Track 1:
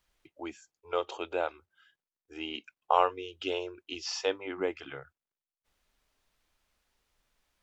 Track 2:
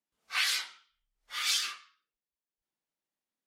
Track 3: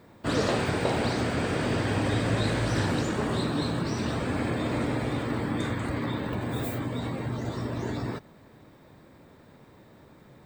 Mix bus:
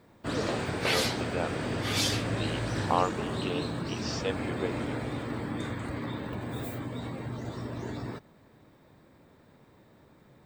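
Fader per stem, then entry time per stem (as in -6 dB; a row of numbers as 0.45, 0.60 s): -2.5, -0.5, -5.0 dB; 0.00, 0.50, 0.00 s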